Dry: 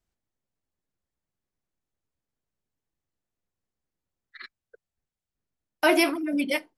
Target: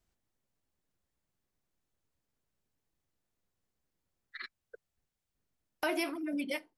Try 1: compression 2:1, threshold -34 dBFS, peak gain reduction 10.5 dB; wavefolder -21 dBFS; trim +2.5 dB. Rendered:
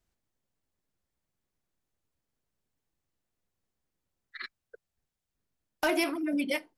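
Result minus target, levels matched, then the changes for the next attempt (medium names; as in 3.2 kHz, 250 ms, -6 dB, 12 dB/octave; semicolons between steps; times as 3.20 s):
compression: peak gain reduction -5.5 dB
change: compression 2:1, threshold -45 dBFS, peak gain reduction 16 dB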